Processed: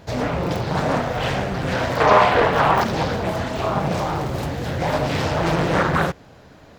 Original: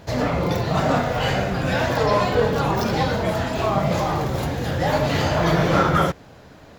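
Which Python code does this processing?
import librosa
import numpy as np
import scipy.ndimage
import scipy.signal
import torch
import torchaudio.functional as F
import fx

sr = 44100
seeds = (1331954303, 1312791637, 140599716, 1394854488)

y = fx.band_shelf(x, sr, hz=1400.0, db=9.0, octaves=2.6, at=(2.0, 2.84))
y = fx.doppler_dist(y, sr, depth_ms=0.68)
y = y * librosa.db_to_amplitude(-1.0)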